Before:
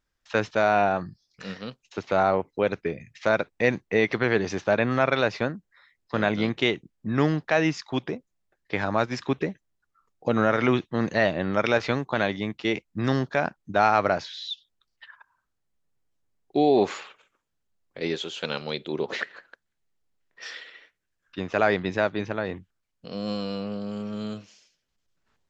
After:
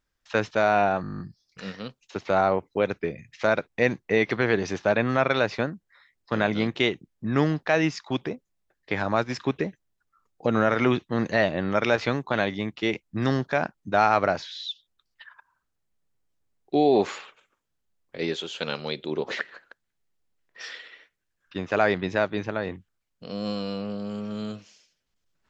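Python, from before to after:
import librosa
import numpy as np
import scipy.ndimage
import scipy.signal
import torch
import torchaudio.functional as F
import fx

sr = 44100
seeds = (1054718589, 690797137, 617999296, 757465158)

y = fx.edit(x, sr, fx.stutter(start_s=1.02, slice_s=0.02, count=10), tone=tone)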